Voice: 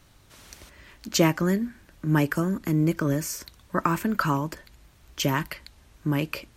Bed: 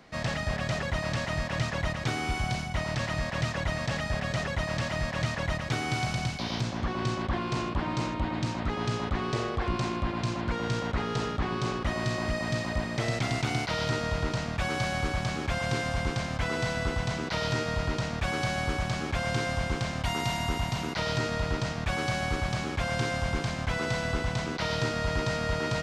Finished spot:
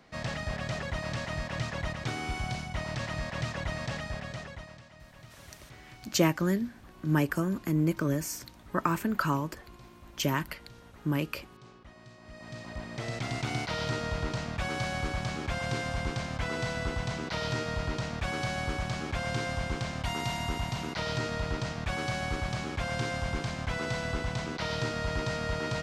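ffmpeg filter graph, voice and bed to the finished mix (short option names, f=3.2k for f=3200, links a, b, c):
-filter_complex "[0:a]adelay=5000,volume=-4dB[a];[1:a]volume=15.5dB,afade=t=out:st=3.85:d=0.97:silence=0.11885,afade=t=in:st=12.22:d=1.36:silence=0.105925[b];[a][b]amix=inputs=2:normalize=0"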